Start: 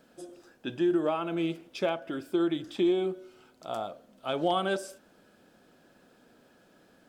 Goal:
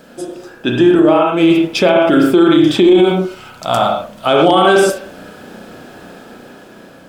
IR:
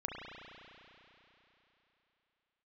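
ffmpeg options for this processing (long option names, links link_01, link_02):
-filter_complex "[0:a]dynaudnorm=framelen=560:gausssize=5:maxgain=5.5dB,asettb=1/sr,asplit=3[link_01][link_02][link_03];[link_01]atrim=end=0.954[link_04];[link_02]atrim=start=0.95:end=1.51,asetpts=PTS-STARTPTS,afade=type=in:duration=0.004:curve=qsin,afade=type=out:start_time=0.556:duration=0.004:curve=qsin,agate=range=-33dB:threshold=-23dB:ratio=3:detection=peak[link_05];[link_03]atrim=start=1.506[link_06];[link_04][link_05]acrossfade=duration=0.004:curve1=hsin:curve2=qsin[link_07];[link_07][link_06]acrossfade=duration=0.004:curve1=qsin:curve2=hsin,asettb=1/sr,asplit=3[link_08][link_09][link_10];[link_08]atrim=end=3.214[link_11];[link_09]atrim=start=3.21:end=4.27,asetpts=PTS-STARTPTS,afade=type=in:duration=0.004:curve=qsin,afade=type=out:start_time=1.056:duration=0.004:curve=qsin,equalizer=frequency=380:width_type=o:width=1.1:gain=-11.5[link_12];[link_10]atrim=start=4.266[link_13];[link_11][link_12]acrossfade=duration=0.004:curve1=hsin:curve2=qsin[link_14];[link_14][link_13]acrossfade=duration=0.004:curve1=qsin:curve2=hsin[link_15];[1:a]atrim=start_sample=2205,atrim=end_sample=6174[link_16];[link_15][link_16]afir=irnorm=-1:irlink=0,alimiter=level_in=21.5dB:limit=-1dB:release=50:level=0:latency=1,volume=-1dB"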